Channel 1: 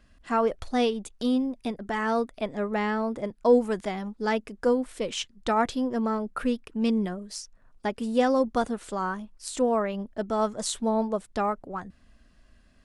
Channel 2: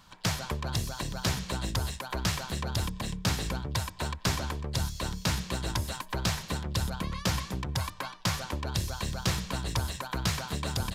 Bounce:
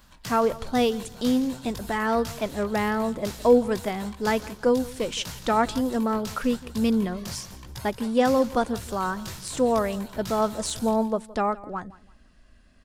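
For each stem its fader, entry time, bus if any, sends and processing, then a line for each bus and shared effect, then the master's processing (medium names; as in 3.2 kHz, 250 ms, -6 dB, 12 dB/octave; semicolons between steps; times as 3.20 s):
+2.0 dB, 0.00 s, no send, echo send -20 dB, de-esser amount 50%
+1.0 dB, 0.00 s, no send, echo send -18 dB, treble shelf 8.8 kHz +12 dB; chorus voices 2, 0.96 Hz, delay 20 ms, depth 4.2 ms; auto duck -8 dB, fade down 0.30 s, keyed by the first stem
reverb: none
echo: feedback delay 168 ms, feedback 27%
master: none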